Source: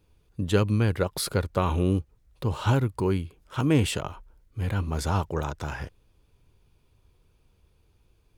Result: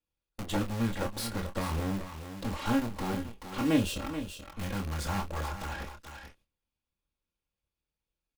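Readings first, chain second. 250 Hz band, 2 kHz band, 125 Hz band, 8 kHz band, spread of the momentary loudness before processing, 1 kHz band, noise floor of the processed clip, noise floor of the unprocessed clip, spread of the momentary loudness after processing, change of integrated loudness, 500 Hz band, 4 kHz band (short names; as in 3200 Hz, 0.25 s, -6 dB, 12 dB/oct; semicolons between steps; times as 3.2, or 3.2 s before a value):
-3.0 dB, -3.5 dB, -10.5 dB, -4.5 dB, 12 LU, -4.0 dB, under -85 dBFS, -65 dBFS, 14 LU, -6.5 dB, -8.5 dB, -4.0 dB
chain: minimum comb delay 3.6 ms; gate -53 dBFS, range -26 dB; spectral delete 3.78–4, 700–2400 Hz; high shelf 7000 Hz -4.5 dB; in parallel at -7 dB: wrapped overs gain 28.5 dB; on the sum: doubler 26 ms -7 dB; on a send: echo 0.431 s -11 dB; on the sum: mismatched tape noise reduction encoder only; gain -5 dB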